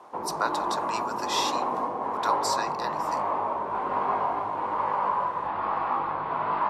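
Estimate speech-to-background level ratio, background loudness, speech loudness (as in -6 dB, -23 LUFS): -4.0 dB, -28.5 LUFS, -32.5 LUFS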